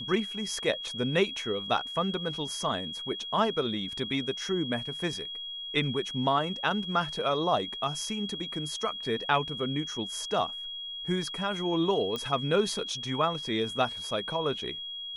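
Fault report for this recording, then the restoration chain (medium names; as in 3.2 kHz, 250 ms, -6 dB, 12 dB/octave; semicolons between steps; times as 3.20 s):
whine 3.3 kHz -36 dBFS
12.16 s: pop -20 dBFS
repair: de-click; band-stop 3.3 kHz, Q 30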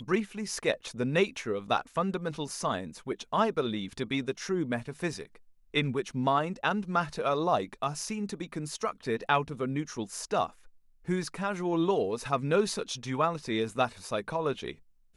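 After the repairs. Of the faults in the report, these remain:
nothing left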